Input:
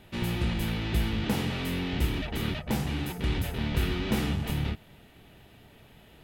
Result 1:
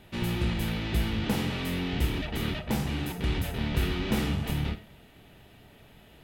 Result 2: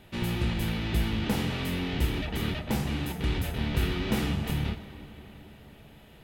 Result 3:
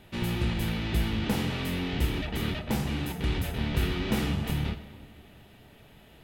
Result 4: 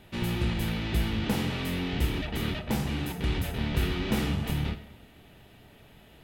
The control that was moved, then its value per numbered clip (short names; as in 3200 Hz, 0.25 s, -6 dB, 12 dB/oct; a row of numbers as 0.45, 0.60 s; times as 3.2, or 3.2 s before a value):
digital reverb, RT60: 0.4, 4.9, 2.1, 0.99 s